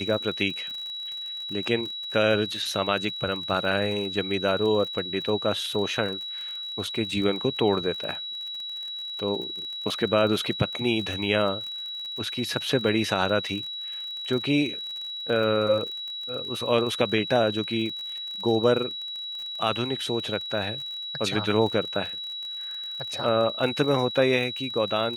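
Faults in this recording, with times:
crackle 39/s -33 dBFS
tone 3900 Hz -32 dBFS

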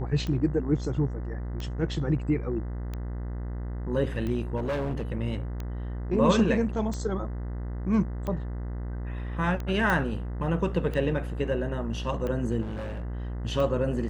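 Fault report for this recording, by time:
buzz 60 Hz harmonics 34 -33 dBFS
tick 45 rpm -21 dBFS
4.56–5.02 clipped -25.5 dBFS
9.9 pop -14 dBFS
12.61–13.05 clipped -31 dBFS

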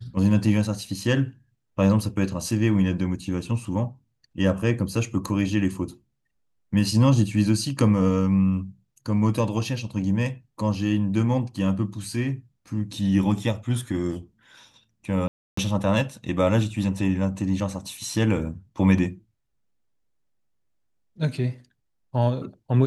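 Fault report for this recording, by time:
15.28–15.57 gap 0.294 s

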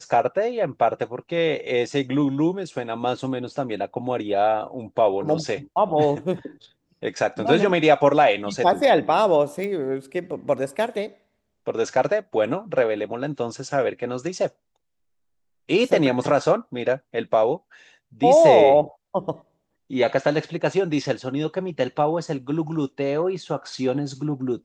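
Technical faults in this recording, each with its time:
9.64 pop -18 dBFS

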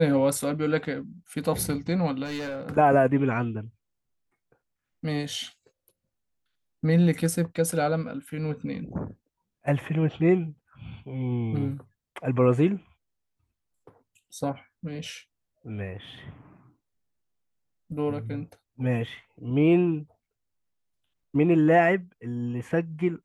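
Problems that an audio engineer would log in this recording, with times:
2.24–2.7 clipped -29 dBFS

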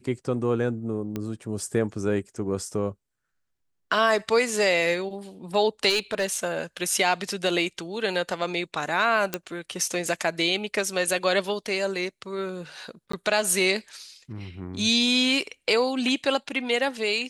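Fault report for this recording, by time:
1.16 pop -17 dBFS
5.89–6.37 clipped -18.5 dBFS
9.34 pop -10 dBFS
13.12–13.13 gap 14 ms

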